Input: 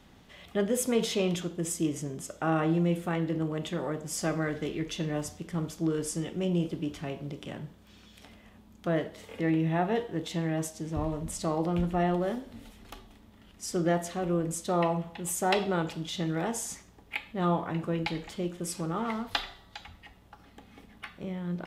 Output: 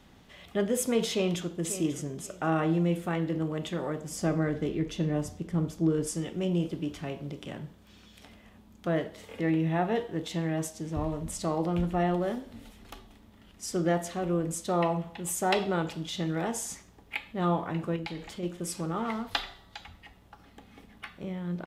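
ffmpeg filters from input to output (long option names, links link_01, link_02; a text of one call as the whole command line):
ffmpeg -i in.wav -filter_complex "[0:a]asplit=2[link_01][link_02];[link_02]afade=type=in:start_time=1.1:duration=0.01,afade=type=out:start_time=1.5:duration=0.01,aecho=0:1:540|1080|1620:0.251189|0.0627972|0.0156993[link_03];[link_01][link_03]amix=inputs=2:normalize=0,asettb=1/sr,asplit=3[link_04][link_05][link_06];[link_04]atrim=end=4.094[link_07];[link_05]atrim=start=4.09:end=6.07,asetpts=PTS-STARTPTS,afade=type=in:duration=0.004:curve=qsin,afade=type=out:start_time=1.976:duration=0.004:curve=qsin,tiltshelf=frequency=730:gain=4.5[link_08];[link_06]atrim=start=6.066[link_09];[link_07][link_08]acrossfade=duration=0.004:curve1=hsin:curve2=qsin[link_10];[link_10][link_09]acrossfade=duration=0.004:curve1=qsin:curve2=hsin,asettb=1/sr,asplit=3[link_11][link_12][link_13];[link_11]atrim=end=17.964[link_14];[link_12]atrim=start=17.96:end=18.43,asetpts=PTS-STARTPTS,afade=type=in:duration=0.004:curve=qsin,afade=type=out:start_time=0.466:duration=0.004:curve=qsin,acompressor=threshold=-36dB:ratio=2:attack=3.2:release=140:knee=1:detection=peak[link_15];[link_13]atrim=start=18.426[link_16];[link_14][link_15]acrossfade=duration=0.004:curve1=hsin:curve2=qsin[link_17];[link_17][link_16]acrossfade=duration=0.004:curve1=qsin:curve2=hsin" out.wav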